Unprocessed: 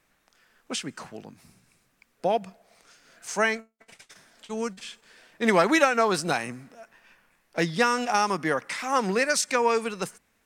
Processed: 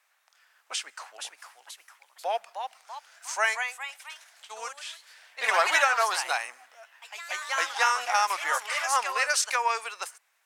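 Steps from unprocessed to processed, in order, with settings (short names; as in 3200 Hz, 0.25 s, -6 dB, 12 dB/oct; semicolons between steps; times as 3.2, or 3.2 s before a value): HPF 720 Hz 24 dB/oct; echoes that change speed 0.554 s, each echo +2 st, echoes 3, each echo -6 dB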